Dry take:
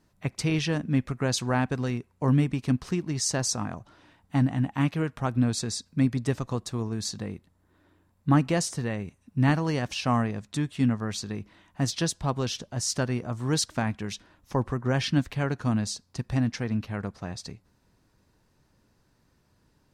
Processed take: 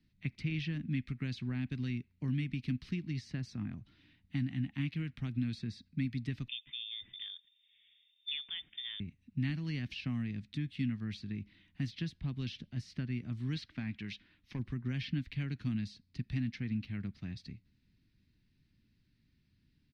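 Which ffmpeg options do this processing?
-filter_complex "[0:a]asettb=1/sr,asplit=3[a][b][c];[a]atrim=end=6.484[d];[b]atrim=start=6.48:end=9,asetpts=PTS-STARTPTS,afade=t=in:d=0.004:c=qsin,afade=t=out:st=2.516:d=0.004:c=qsin,lowpass=f=3.1k:t=q:w=0.5098,lowpass=f=3.1k:t=q:w=0.6013,lowpass=f=3.1k:t=q:w=0.9,lowpass=f=3.1k:t=q:w=2.563,afreqshift=-3700[e];[c]atrim=start=8.996[f];[d][e]acrossfade=d=0.004:c1=hsin:c2=qsin[g];[g][f]acrossfade=d=0.004:c1=qsin:c2=hsin,asettb=1/sr,asplit=3[h][i][j];[h]atrim=end=13.564[k];[i]atrim=start=13.56:end=14.59,asetpts=PTS-STARTPTS,afade=t=in:d=0.004:c=qsin,afade=t=out:st=1.026:d=0.004:c=qsin,asplit=2[l][m];[m]highpass=f=720:p=1,volume=9dB,asoftclip=type=tanh:threshold=-13dB[n];[l][n]amix=inputs=2:normalize=0,lowpass=f=4.1k:p=1,volume=-6dB[o];[j]atrim=start=14.586[p];[k][o]acrossfade=d=0.004:c1=hsin:c2=qsin[q];[q][p]acrossfade=d=0.004:c1=qsin:c2=hsin,aemphasis=mode=production:type=50kf,acrossover=split=120|880|2500[r][s][t][u];[r]acompressor=threshold=-39dB:ratio=4[v];[s]acompressor=threshold=-28dB:ratio=4[w];[t]acompressor=threshold=-36dB:ratio=4[x];[u]acompressor=threshold=-39dB:ratio=4[y];[v][w][x][y]amix=inputs=4:normalize=0,firequalizer=gain_entry='entry(250,0);entry(490,-20);entry(930,-22);entry(2100,-1);entry(4200,-5);entry(7100,-27)':delay=0.05:min_phase=1,volume=-4.5dB"

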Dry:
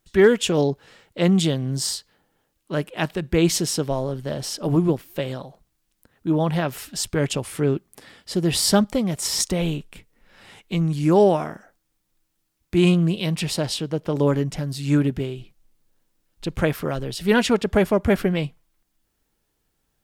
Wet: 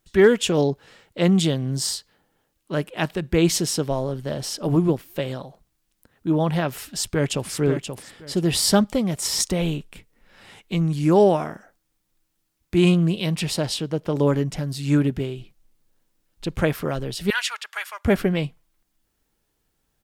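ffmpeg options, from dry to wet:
-filter_complex "[0:a]asplit=2[a][b];[b]afade=t=in:st=6.86:d=0.01,afade=t=out:st=7.49:d=0.01,aecho=0:1:530|1060|1590:0.446684|0.0893367|0.0178673[c];[a][c]amix=inputs=2:normalize=0,asettb=1/sr,asplit=3[d][e][f];[d]atrim=end=17.304[g];[e]atrim=start=17.3:end=18.05,asetpts=PTS-STARTPTS,afade=t=in:d=0.004:c=qsin,afade=t=out:st=0.746:d=0.004:c=qsin,highpass=f=1.2k:w=0.5412,highpass=f=1.2k:w=1.3066[h];[f]atrim=start=18.046[i];[g][h]acrossfade=d=0.004:c1=hsin:c2=qsin[j];[j][i]acrossfade=d=0.004:c1=qsin:c2=hsin"

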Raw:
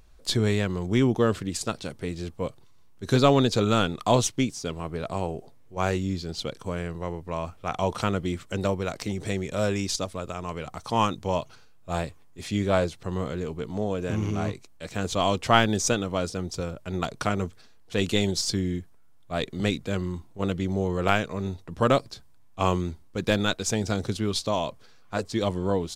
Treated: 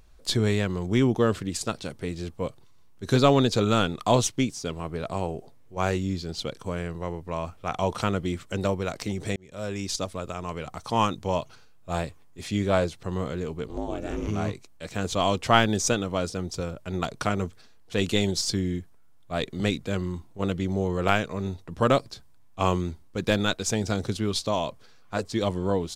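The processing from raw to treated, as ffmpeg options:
-filter_complex "[0:a]asettb=1/sr,asplit=3[a][b][c];[a]atrim=end=13.674[d];[b]atrim=start=13.67:end=14.28,asetpts=PTS-STARTPTS,afade=t=in:d=0.004:c=qsin,afade=t=out:st=0.606:d=0.004:c=qsin,aeval=exprs='val(0)*sin(2*PI*160*n/s)':c=same[e];[c]atrim=start=14.276[f];[d][e]acrossfade=d=0.004:c1=hsin:c2=qsin[g];[g][f]acrossfade=d=0.004:c1=qsin:c2=hsin,asplit=2[h][i];[h]atrim=end=9.36,asetpts=PTS-STARTPTS,afade=t=out:st=9.356:d=0.004:c=hsin[j];[i]atrim=start=9.36,asetpts=PTS-STARTPTS,afade=t=in:d=0.68[k];[j][k]concat=n=2:v=0:a=1"

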